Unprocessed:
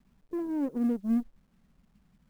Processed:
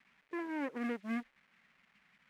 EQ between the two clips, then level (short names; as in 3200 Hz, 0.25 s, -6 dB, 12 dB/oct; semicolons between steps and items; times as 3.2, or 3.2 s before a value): band-pass 2100 Hz, Q 2.5; +16.0 dB